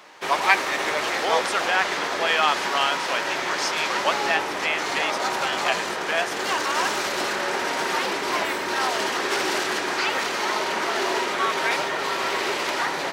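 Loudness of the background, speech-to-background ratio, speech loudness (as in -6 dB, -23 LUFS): -24.0 LUFS, -2.5 dB, -26.5 LUFS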